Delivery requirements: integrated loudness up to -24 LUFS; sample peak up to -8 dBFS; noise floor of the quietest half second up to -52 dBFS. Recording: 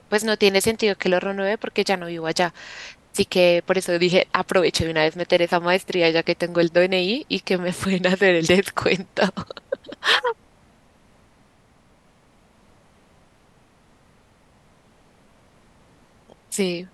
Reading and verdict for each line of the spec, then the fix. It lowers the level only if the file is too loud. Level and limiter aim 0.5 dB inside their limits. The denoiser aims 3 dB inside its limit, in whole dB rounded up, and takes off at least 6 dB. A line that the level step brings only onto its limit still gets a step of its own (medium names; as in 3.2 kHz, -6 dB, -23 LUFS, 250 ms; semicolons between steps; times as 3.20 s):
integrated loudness -20.5 LUFS: fail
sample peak -3.5 dBFS: fail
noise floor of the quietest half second -56 dBFS: pass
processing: trim -4 dB; peak limiter -8.5 dBFS